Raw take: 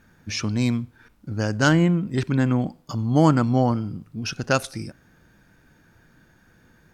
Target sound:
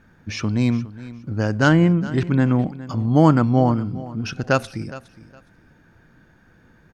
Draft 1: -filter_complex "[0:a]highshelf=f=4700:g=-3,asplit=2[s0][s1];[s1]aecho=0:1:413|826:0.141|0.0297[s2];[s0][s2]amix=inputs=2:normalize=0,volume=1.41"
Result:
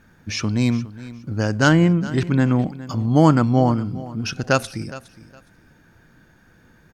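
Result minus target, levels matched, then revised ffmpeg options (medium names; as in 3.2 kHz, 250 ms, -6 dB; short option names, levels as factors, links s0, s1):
8 kHz band +6.0 dB
-filter_complex "[0:a]highshelf=f=4700:g=-12.5,asplit=2[s0][s1];[s1]aecho=0:1:413|826:0.141|0.0297[s2];[s0][s2]amix=inputs=2:normalize=0,volume=1.41"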